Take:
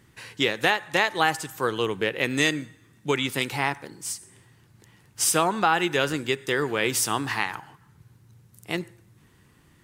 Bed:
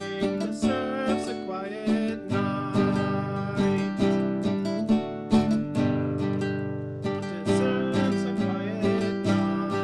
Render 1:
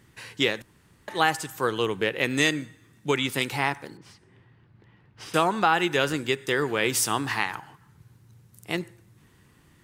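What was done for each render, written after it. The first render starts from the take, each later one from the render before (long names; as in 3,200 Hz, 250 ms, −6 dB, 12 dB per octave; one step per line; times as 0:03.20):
0:00.62–0:01.08: fill with room tone
0:03.97–0:05.34: high-frequency loss of the air 340 metres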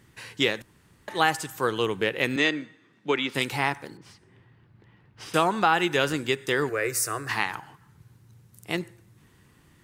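0:02.36–0:03.35: three-way crossover with the lows and the highs turned down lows −21 dB, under 180 Hz, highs −21 dB, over 4,900 Hz
0:06.69–0:07.29: phaser with its sweep stopped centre 880 Hz, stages 6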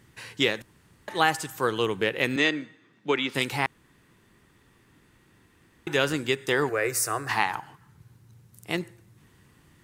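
0:03.66–0:05.87: fill with room tone
0:06.48–0:07.61: parametric band 800 Hz +6.5 dB 0.66 octaves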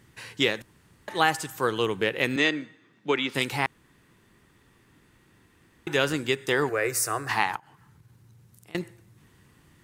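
0:07.56–0:08.75: downward compressor 4 to 1, threshold −51 dBFS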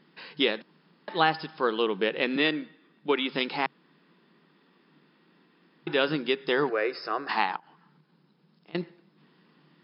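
brick-wall band-pass 140–5,300 Hz
parametric band 2,000 Hz −4.5 dB 0.62 octaves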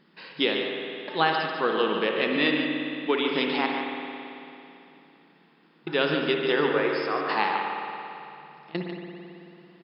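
single-tap delay 145 ms −8.5 dB
spring reverb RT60 2.9 s, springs 55 ms, chirp 50 ms, DRR 1.5 dB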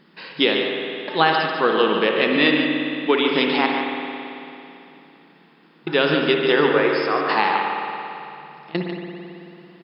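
level +6.5 dB
brickwall limiter −3 dBFS, peak gain reduction 2.5 dB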